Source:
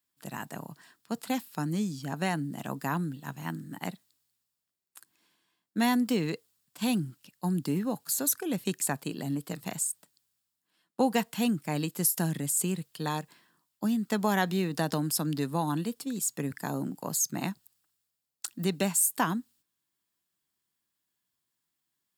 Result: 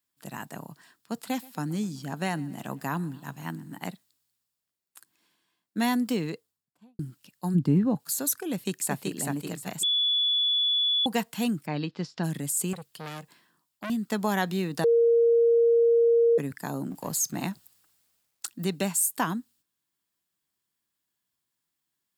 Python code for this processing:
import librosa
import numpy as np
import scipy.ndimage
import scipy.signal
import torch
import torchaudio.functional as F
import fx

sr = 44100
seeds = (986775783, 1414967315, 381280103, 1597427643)

y = fx.echo_feedback(x, sr, ms=127, feedback_pct=58, wet_db=-23.0, at=(1.2, 3.82))
y = fx.studio_fade_out(y, sr, start_s=6.08, length_s=0.91)
y = fx.riaa(y, sr, side='playback', at=(7.54, 7.98), fade=0.02)
y = fx.echo_throw(y, sr, start_s=8.52, length_s=0.65, ms=380, feedback_pct=30, wet_db=-3.0)
y = fx.steep_lowpass(y, sr, hz=4900.0, slope=36, at=(11.65, 12.23), fade=0.02)
y = fx.transformer_sat(y, sr, knee_hz=2300.0, at=(12.73, 13.9))
y = fx.law_mismatch(y, sr, coded='mu', at=(16.9, 18.46), fade=0.02)
y = fx.edit(y, sr, fx.bleep(start_s=9.83, length_s=1.23, hz=3430.0, db=-21.5),
    fx.bleep(start_s=14.84, length_s=1.54, hz=466.0, db=-17.0), tone=tone)